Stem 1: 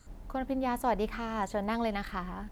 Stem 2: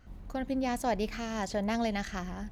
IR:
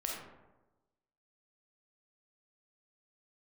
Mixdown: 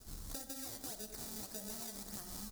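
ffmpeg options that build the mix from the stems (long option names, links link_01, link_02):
-filter_complex "[0:a]acrusher=samples=41:mix=1:aa=0.000001,alimiter=level_in=3.5dB:limit=-24dB:level=0:latency=1:release=217,volume=-3.5dB,volume=-8.5dB,asplit=3[link_01][link_02][link_03];[link_02]volume=-9dB[link_04];[1:a]acrusher=samples=19:mix=1:aa=0.000001:lfo=1:lforange=30.4:lforate=1.7,adelay=14,volume=-5dB,asplit=2[link_05][link_06];[link_06]volume=-14.5dB[link_07];[link_03]apad=whole_len=111698[link_08];[link_05][link_08]sidechaincompress=threshold=-47dB:ratio=8:attack=16:release=1140[link_09];[2:a]atrim=start_sample=2205[link_10];[link_04][link_07]amix=inputs=2:normalize=0[link_11];[link_11][link_10]afir=irnorm=-1:irlink=0[link_12];[link_01][link_09][link_12]amix=inputs=3:normalize=0,aexciter=amount=7.2:drive=5.2:freq=4000,acompressor=threshold=-41dB:ratio=10"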